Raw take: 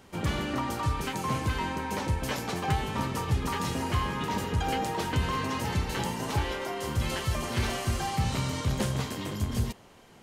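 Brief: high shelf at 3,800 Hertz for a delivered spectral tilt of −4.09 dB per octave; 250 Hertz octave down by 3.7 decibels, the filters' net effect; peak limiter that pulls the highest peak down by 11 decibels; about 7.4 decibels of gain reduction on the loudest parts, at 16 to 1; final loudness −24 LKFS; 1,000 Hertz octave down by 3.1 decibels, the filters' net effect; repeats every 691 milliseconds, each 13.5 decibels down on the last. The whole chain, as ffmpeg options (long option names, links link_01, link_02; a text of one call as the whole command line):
ffmpeg -i in.wav -af "equalizer=frequency=250:width_type=o:gain=-5,equalizer=frequency=1000:width_type=o:gain=-4,highshelf=frequency=3800:gain=6.5,acompressor=threshold=-30dB:ratio=16,alimiter=level_in=4.5dB:limit=-24dB:level=0:latency=1,volume=-4.5dB,aecho=1:1:691|1382:0.211|0.0444,volume=13.5dB" out.wav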